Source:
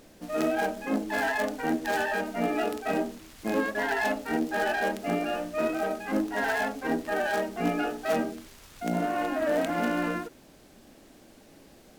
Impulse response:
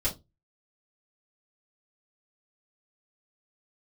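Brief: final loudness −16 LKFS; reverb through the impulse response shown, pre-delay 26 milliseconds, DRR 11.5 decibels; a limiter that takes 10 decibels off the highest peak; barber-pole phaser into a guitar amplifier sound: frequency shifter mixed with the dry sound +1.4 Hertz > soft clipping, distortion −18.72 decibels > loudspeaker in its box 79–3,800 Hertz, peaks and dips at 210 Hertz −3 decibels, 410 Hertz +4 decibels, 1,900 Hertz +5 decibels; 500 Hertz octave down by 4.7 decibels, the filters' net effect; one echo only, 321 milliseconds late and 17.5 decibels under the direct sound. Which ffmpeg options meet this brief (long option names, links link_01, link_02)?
-filter_complex "[0:a]equalizer=frequency=500:width_type=o:gain=-8,alimiter=level_in=2dB:limit=-24dB:level=0:latency=1,volume=-2dB,aecho=1:1:321:0.133,asplit=2[link_01][link_02];[1:a]atrim=start_sample=2205,adelay=26[link_03];[link_02][link_03]afir=irnorm=-1:irlink=0,volume=-18dB[link_04];[link_01][link_04]amix=inputs=2:normalize=0,asplit=2[link_05][link_06];[link_06]afreqshift=1.4[link_07];[link_05][link_07]amix=inputs=2:normalize=1,asoftclip=threshold=-30.5dB,highpass=79,equalizer=frequency=210:width_type=q:width=4:gain=-3,equalizer=frequency=410:width_type=q:width=4:gain=4,equalizer=frequency=1900:width_type=q:width=4:gain=5,lowpass=frequency=3800:width=0.5412,lowpass=frequency=3800:width=1.3066,volume=22dB"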